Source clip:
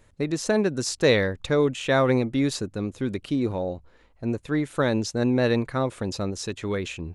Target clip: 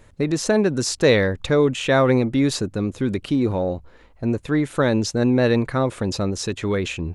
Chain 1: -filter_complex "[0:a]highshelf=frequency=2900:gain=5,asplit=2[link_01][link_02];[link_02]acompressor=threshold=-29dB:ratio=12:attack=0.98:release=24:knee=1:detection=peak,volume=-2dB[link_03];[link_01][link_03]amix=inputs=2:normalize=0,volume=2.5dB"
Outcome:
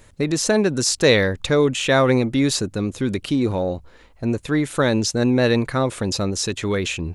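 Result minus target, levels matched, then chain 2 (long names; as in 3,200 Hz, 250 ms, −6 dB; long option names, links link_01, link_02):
8,000 Hz band +4.5 dB
-filter_complex "[0:a]highshelf=frequency=2900:gain=-3,asplit=2[link_01][link_02];[link_02]acompressor=threshold=-29dB:ratio=12:attack=0.98:release=24:knee=1:detection=peak,volume=-2dB[link_03];[link_01][link_03]amix=inputs=2:normalize=0,volume=2.5dB"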